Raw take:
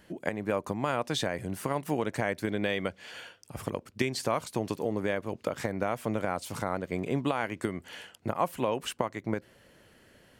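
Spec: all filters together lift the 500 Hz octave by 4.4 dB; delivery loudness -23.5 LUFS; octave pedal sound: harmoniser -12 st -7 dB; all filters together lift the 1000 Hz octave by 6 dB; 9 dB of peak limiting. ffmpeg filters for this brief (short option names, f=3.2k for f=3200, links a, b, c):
-filter_complex "[0:a]equalizer=f=500:t=o:g=3.5,equalizer=f=1k:t=o:g=6.5,alimiter=limit=-15dB:level=0:latency=1,asplit=2[a][b];[b]asetrate=22050,aresample=44100,atempo=2,volume=-7dB[c];[a][c]amix=inputs=2:normalize=0,volume=6.5dB"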